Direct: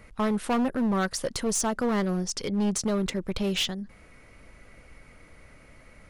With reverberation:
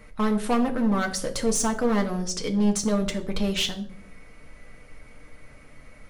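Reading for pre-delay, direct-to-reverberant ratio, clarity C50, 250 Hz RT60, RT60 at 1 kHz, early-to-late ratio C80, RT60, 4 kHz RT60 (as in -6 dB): 4 ms, 3.0 dB, 13.0 dB, 0.95 s, 0.45 s, 17.0 dB, 0.60 s, 0.40 s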